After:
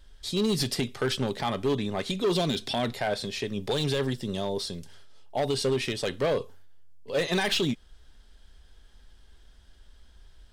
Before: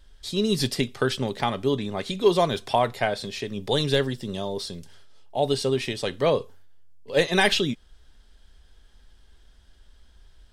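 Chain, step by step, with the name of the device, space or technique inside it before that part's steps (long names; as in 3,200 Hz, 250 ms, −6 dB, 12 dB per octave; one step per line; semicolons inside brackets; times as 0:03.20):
0:02.35–0:02.95: octave-band graphic EQ 250/500/1,000/4,000 Hz +8/−3/−8/+7 dB
limiter into clipper (brickwall limiter −14.5 dBFS, peak gain reduction 7.5 dB; hard clipping −20.5 dBFS, distortion −15 dB)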